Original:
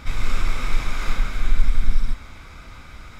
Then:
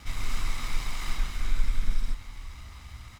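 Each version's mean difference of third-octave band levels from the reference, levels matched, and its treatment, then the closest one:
3.5 dB: lower of the sound and its delayed copy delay 1 ms
high-shelf EQ 3,400 Hz +6.5 dB
echo with shifted repeats 477 ms, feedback 45%, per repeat −42 Hz, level −19.5 dB
level −7 dB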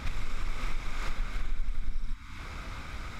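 5.0 dB: gain on a spectral selection 0:02.07–0:02.39, 340–880 Hz −29 dB
downward compressor 3 to 1, threshold −30 dBFS, peak gain reduction 17 dB
highs frequency-modulated by the lows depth 0.39 ms
level +1 dB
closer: first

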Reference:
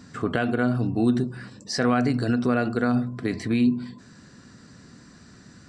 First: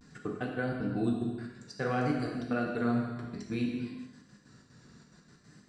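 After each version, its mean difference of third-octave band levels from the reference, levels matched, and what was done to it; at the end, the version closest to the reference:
4.5 dB: gate pattern "xx.x.x.xx.xx" 185 BPM −60 dB
flanger 1.2 Hz, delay 4.1 ms, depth 4 ms, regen −46%
pitch vibrato 0.57 Hz 57 cents
reverb whose tail is shaped and stops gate 470 ms falling, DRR −0.5 dB
level −6.5 dB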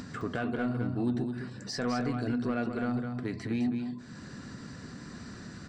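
5.5 dB: high-shelf EQ 6,700 Hz −8.5 dB
upward compression, threshold −25 dBFS
soft clipping −15 dBFS, distortion −18 dB
on a send: single-tap delay 210 ms −7 dB
on the sum: level −7.5 dB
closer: first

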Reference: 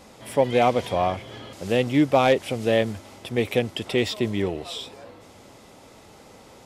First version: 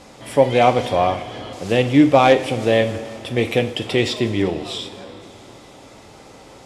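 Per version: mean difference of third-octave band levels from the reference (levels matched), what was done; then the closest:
2.0 dB: low-pass filter 9,800 Hz 12 dB per octave
coupled-rooms reverb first 0.42 s, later 3.7 s, from −16 dB, DRR 7 dB
level +4.5 dB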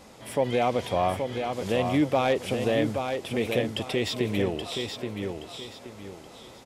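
5.0 dB: brickwall limiter −13 dBFS, peak gain reduction 4.5 dB
on a send: repeating echo 825 ms, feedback 31%, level −6 dB
on the sum: level −1.5 dB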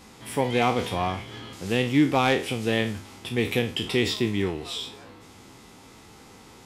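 3.5 dB: peak hold with a decay on every bin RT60 0.36 s
parametric band 590 Hz −12.5 dB 0.49 octaves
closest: first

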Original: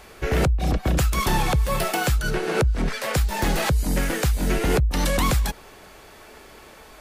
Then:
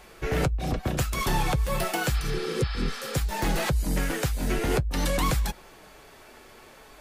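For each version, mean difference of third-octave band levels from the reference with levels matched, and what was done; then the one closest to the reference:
1.0 dB: healed spectral selection 0:02.16–0:03.13, 540–5,400 Hz before
flanger 0.54 Hz, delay 5.5 ms, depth 3 ms, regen −46%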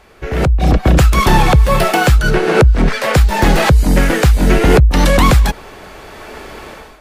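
3.0 dB: automatic gain control gain up to 15.5 dB
high-shelf EQ 5,000 Hz −9 dB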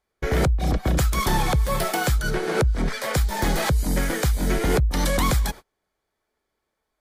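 5.5 dB: notch filter 2,700 Hz, Q 7.5
noise gate −34 dBFS, range −33 dB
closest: first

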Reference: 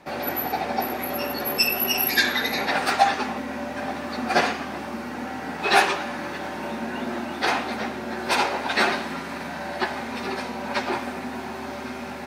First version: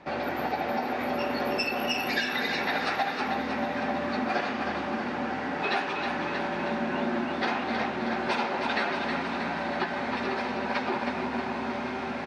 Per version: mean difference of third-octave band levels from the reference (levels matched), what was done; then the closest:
5.5 dB: low-pass filter 3,900 Hz 12 dB per octave
downward compressor 6 to 1, threshold −26 dBFS, peak gain reduction 13.5 dB
repeating echo 317 ms, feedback 60%, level −6 dB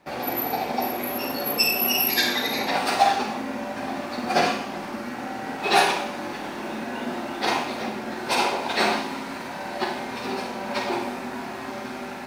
2.0 dB: mu-law and A-law mismatch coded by A
dynamic equaliser 1,600 Hz, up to −6 dB, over −39 dBFS, Q 1.8
four-comb reverb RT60 0.52 s, combs from 33 ms, DRR 3 dB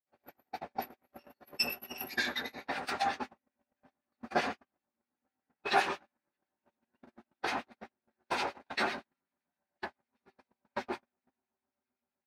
20.0 dB: two-band tremolo in antiphase 7.8 Hz, depth 70%, crossover 1,700 Hz
high-shelf EQ 6,900 Hz −5 dB
noise gate −27 dBFS, range −47 dB
level −7.5 dB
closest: second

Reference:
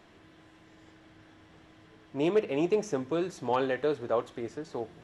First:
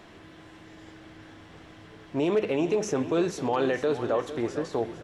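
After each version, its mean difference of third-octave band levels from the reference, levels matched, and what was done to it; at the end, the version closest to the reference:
4.0 dB: brickwall limiter −24.5 dBFS, peak gain reduction 7.5 dB
repeating echo 453 ms, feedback 49%, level −12.5 dB
level +7.5 dB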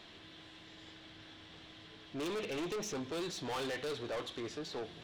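9.5 dB: parametric band 3,700 Hz +14.5 dB 1.1 octaves
soft clipping −34.5 dBFS, distortion −4 dB
level −1 dB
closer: first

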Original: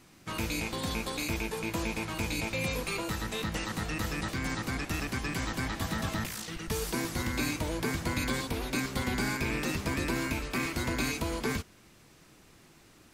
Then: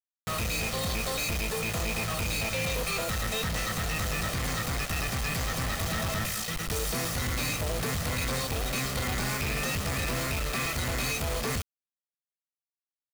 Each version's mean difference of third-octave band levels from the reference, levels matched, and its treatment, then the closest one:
6.5 dB: comb filter 1.6 ms, depth 73%
log-companded quantiser 2 bits
level −3.5 dB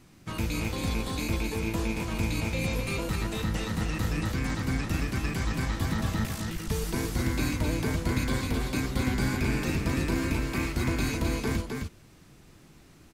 3.5 dB: low-shelf EQ 260 Hz +9 dB
on a send: single-tap delay 262 ms −4.5 dB
on the sum: level −2 dB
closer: second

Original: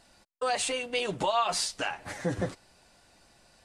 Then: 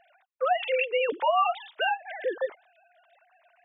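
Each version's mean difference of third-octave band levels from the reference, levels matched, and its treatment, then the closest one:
15.5 dB: three sine waves on the formant tracks
in parallel at 0 dB: compressor whose output falls as the input rises −33 dBFS, ratio −1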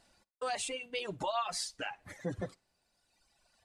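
5.0 dB: on a send: flutter between parallel walls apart 9.9 metres, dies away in 0.21 s
on the sum: reverb reduction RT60 1.8 s
level −6.5 dB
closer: second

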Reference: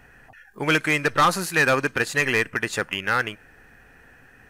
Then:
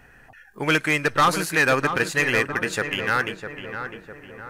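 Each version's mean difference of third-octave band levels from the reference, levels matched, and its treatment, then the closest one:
4.0 dB: feedback echo with a low-pass in the loop 654 ms, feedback 52%, low-pass 1,900 Hz, level −8 dB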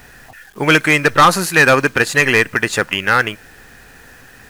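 1.5 dB: bit reduction 9 bits
level +8.5 dB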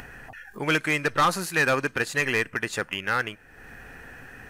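3.0 dB: upward compression, threshold −30 dBFS
level −3 dB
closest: second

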